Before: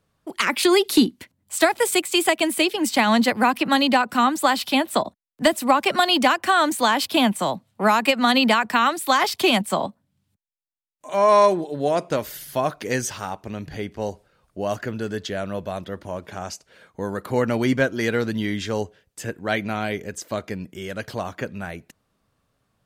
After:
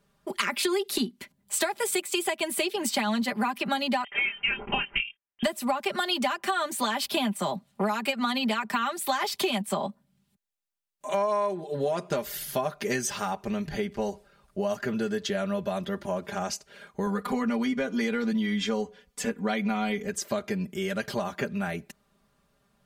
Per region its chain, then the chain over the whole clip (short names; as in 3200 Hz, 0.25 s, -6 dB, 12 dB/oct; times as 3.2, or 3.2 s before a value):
4.04–5.43 HPF 590 Hz 6 dB/oct + inverted band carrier 3400 Hz + doubler 24 ms -5.5 dB
17.06–20.07 high shelf 9000 Hz -7 dB + comb 4.1 ms, depth 96% + compressor 2:1, threshold -19 dBFS
whole clip: comb 5 ms, depth 83%; compressor 6:1, threshold -25 dBFS